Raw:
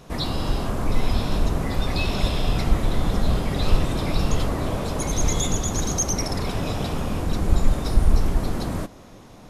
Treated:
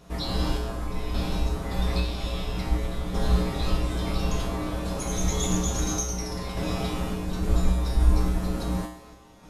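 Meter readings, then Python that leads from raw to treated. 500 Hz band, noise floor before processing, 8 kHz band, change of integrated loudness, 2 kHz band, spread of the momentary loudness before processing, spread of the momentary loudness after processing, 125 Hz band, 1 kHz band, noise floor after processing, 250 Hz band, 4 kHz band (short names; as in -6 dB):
-3.5 dB, -45 dBFS, -4.5 dB, -3.0 dB, -4.5 dB, 4 LU, 6 LU, -3.0 dB, -4.0 dB, -48 dBFS, -2.5 dB, -4.0 dB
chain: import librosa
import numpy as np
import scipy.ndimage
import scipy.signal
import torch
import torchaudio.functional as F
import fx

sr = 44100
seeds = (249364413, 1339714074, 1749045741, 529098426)

p1 = fx.rider(x, sr, range_db=10, speed_s=2.0)
p2 = x + (p1 * 10.0 ** (-2.0 / 20.0))
p3 = fx.tremolo_random(p2, sr, seeds[0], hz=3.5, depth_pct=55)
p4 = fx.comb_fb(p3, sr, f0_hz=61.0, decay_s=0.67, harmonics='odd', damping=0.0, mix_pct=90)
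y = p4 * 10.0 ** (6.0 / 20.0)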